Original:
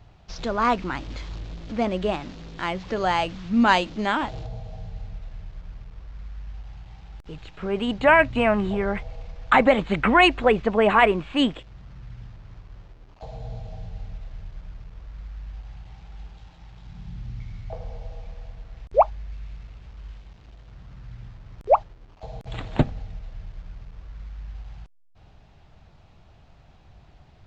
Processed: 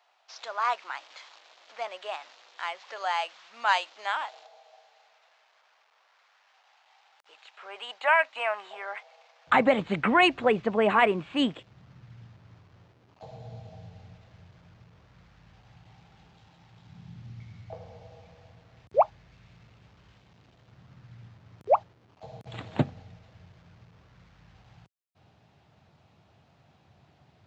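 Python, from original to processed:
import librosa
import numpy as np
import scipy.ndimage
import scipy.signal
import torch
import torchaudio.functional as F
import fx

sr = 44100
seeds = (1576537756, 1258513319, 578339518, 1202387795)

y = fx.highpass(x, sr, hz=fx.steps((0.0, 690.0), (9.47, 98.0)), slope=24)
y = y * librosa.db_to_amplitude(-4.5)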